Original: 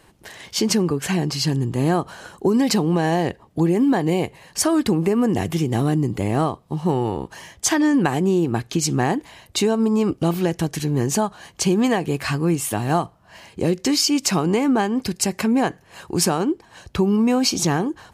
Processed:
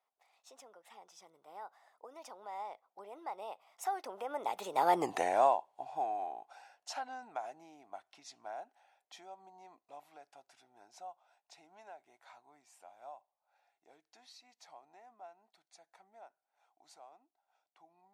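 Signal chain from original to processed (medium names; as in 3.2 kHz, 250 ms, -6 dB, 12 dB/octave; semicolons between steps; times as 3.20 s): Doppler pass-by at 5.07 s, 58 m/s, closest 6.2 m; resonant high-pass 750 Hz, resonance Q 4.9; treble shelf 10 kHz -6.5 dB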